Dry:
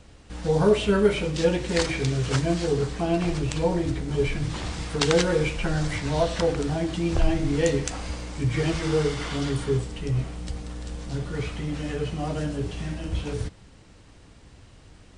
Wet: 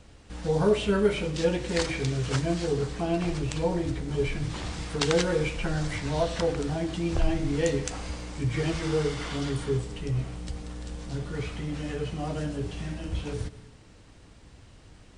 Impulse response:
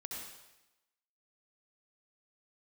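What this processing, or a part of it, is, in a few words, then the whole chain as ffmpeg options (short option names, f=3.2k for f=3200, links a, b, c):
ducked reverb: -filter_complex "[0:a]asplit=3[a][b][c];[1:a]atrim=start_sample=2205[d];[b][d]afir=irnorm=-1:irlink=0[e];[c]apad=whole_len=669040[f];[e][f]sidechaincompress=threshold=-37dB:ratio=8:attack=16:release=120,volume=-8dB[g];[a][g]amix=inputs=2:normalize=0,volume=-3.5dB"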